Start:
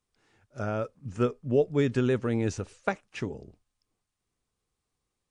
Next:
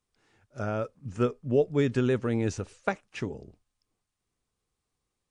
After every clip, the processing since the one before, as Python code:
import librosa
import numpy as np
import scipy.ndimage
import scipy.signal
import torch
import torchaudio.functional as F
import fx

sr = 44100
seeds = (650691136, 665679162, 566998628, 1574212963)

y = x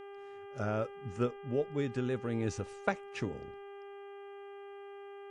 y = fx.rider(x, sr, range_db=3, speed_s=0.5)
y = fx.dmg_buzz(y, sr, base_hz=400.0, harmonics=8, level_db=-42.0, tilt_db=-8, odd_only=False)
y = y * librosa.db_to_amplitude(-6.0)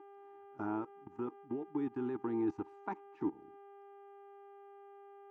y = fx.level_steps(x, sr, step_db=19)
y = fx.double_bandpass(y, sr, hz=540.0, octaves=1.5)
y = y * librosa.db_to_amplitude(14.0)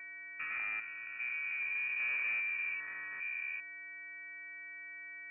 y = fx.spec_steps(x, sr, hold_ms=400)
y = fx.leveller(y, sr, passes=2)
y = fx.freq_invert(y, sr, carrier_hz=2700)